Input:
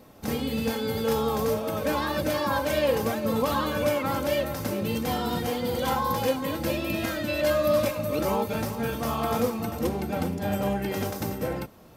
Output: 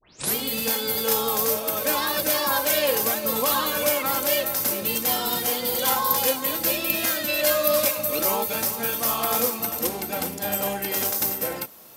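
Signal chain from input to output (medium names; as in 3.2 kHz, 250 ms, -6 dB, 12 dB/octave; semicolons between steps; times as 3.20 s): tape start-up on the opening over 0.35 s; RIAA curve recording; trim +2 dB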